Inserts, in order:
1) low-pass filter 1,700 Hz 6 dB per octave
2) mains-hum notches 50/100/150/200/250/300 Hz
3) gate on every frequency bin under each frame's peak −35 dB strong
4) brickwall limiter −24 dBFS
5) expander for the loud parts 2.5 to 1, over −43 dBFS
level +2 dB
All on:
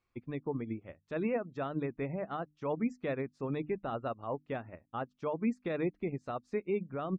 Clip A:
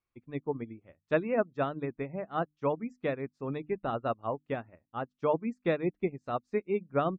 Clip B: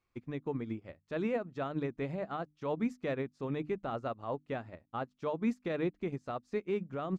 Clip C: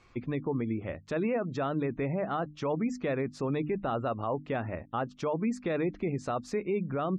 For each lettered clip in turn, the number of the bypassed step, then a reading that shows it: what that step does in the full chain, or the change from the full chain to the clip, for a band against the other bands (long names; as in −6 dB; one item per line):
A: 4, average gain reduction 2.0 dB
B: 3, 4 kHz band +3.5 dB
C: 5, change in crest factor −4.5 dB